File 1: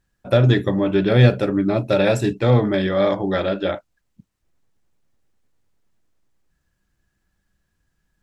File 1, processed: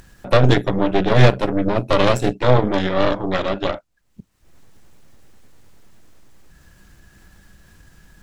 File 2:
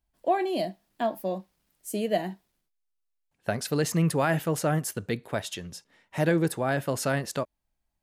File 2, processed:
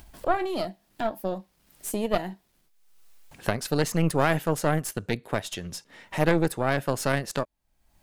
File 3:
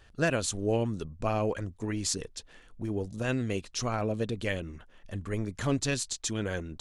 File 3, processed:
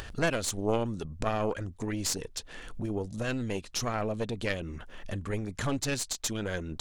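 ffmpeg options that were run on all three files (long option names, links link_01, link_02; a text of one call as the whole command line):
ffmpeg -i in.wav -af "acompressor=mode=upward:threshold=-27dB:ratio=2.5,aeval=exprs='0.891*(cos(1*acos(clip(val(0)/0.891,-1,1)))-cos(1*PI/2))+0.1*(cos(5*acos(clip(val(0)/0.891,-1,1)))-cos(5*PI/2))+0.282*(cos(6*acos(clip(val(0)/0.891,-1,1)))-cos(6*PI/2))+0.0562*(cos(7*acos(clip(val(0)/0.891,-1,1)))-cos(7*PI/2))':channel_layout=same,volume=-2dB" out.wav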